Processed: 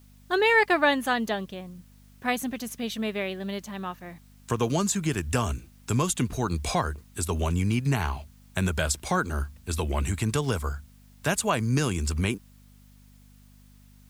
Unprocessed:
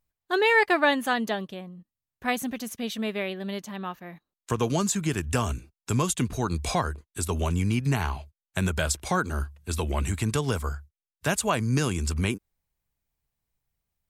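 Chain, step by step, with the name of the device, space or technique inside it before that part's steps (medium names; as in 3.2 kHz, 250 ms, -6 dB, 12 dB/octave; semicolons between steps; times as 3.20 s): video cassette with head-switching buzz (mains buzz 50 Hz, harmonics 5, -54 dBFS -4 dB/octave; white noise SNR 36 dB)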